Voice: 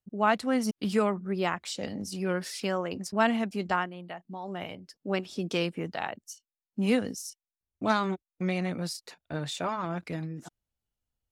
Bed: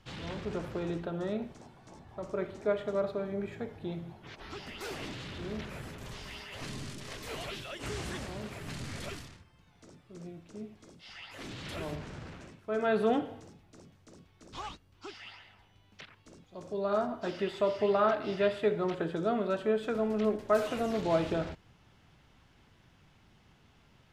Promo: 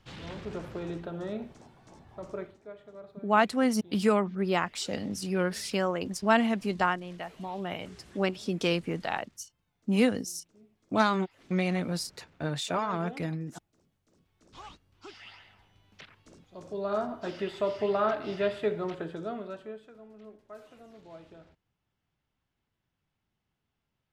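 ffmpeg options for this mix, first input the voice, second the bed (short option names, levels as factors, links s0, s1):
-filter_complex "[0:a]adelay=3100,volume=1.19[s0];[1:a]volume=5.01,afade=t=out:st=2.32:d=0.26:silence=0.188365,afade=t=in:st=14.05:d=1.3:silence=0.16788,afade=t=out:st=18.64:d=1.26:silence=0.1[s1];[s0][s1]amix=inputs=2:normalize=0"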